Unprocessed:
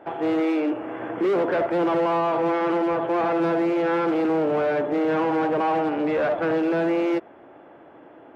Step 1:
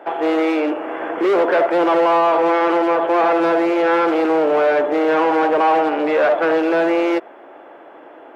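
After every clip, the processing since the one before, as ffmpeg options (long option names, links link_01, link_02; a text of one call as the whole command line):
ffmpeg -i in.wav -af "highpass=400,volume=8.5dB" out.wav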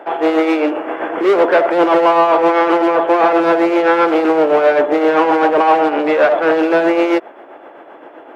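ffmpeg -i in.wav -af "tremolo=f=7.7:d=0.46,volume=5.5dB" out.wav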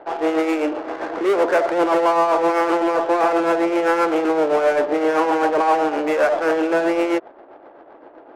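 ffmpeg -i in.wav -af "adynamicsmooth=sensitivity=2.5:basefreq=1100,volume=-5.5dB" out.wav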